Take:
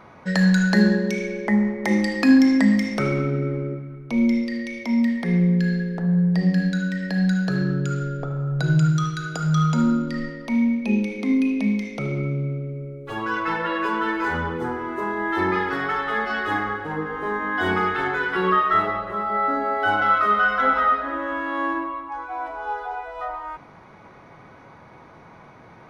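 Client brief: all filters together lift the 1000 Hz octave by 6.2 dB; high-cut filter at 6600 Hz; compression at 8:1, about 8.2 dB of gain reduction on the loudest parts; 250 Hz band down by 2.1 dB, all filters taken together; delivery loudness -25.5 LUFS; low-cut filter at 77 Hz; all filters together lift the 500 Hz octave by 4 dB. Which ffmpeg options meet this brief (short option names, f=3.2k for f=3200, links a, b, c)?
-af "highpass=77,lowpass=6.6k,equalizer=f=250:t=o:g=-4,equalizer=f=500:t=o:g=4.5,equalizer=f=1k:t=o:g=7.5,acompressor=threshold=-18dB:ratio=8,volume=-2dB"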